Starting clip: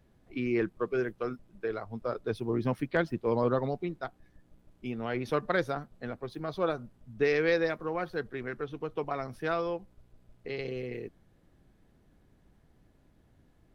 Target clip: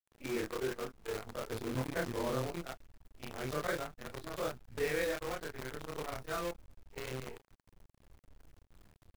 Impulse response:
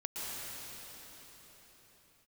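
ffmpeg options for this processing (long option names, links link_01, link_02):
-af "afftfilt=real='re':imag='-im':win_size=4096:overlap=0.75,asubboost=boost=5:cutoff=85,acrusher=bits=7:dc=4:mix=0:aa=0.000001,atempo=1.5,volume=-1.5dB"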